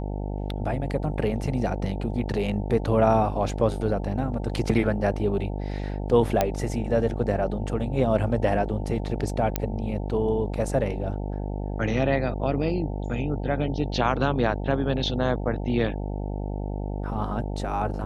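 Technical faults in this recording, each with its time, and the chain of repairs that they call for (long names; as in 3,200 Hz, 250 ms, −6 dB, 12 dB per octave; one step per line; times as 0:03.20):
mains buzz 50 Hz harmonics 18 −30 dBFS
0:06.41: click −7 dBFS
0:09.56: click −8 dBFS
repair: click removal
hum removal 50 Hz, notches 18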